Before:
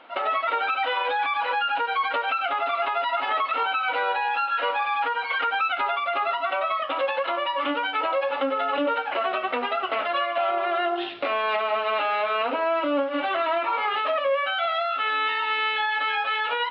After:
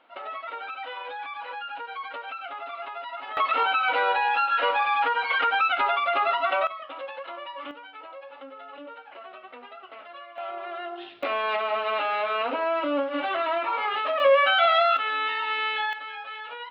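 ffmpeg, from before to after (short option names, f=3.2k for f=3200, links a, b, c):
-af "asetnsamples=n=441:p=0,asendcmd='3.37 volume volume 1.5dB;6.67 volume volume -11.5dB;7.71 volume volume -18dB;10.38 volume volume -10.5dB;11.23 volume volume -2dB;14.2 volume volume 5.5dB;14.97 volume volume -2.5dB;15.93 volume volume -12dB',volume=-11dB"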